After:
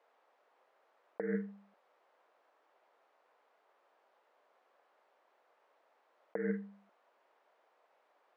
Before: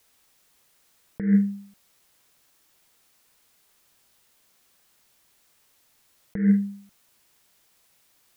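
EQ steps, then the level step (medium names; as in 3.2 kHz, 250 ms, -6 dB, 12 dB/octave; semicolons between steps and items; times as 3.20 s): ladder high-pass 430 Hz, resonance 30%; low-pass 1.1 kHz 12 dB/octave; +11.0 dB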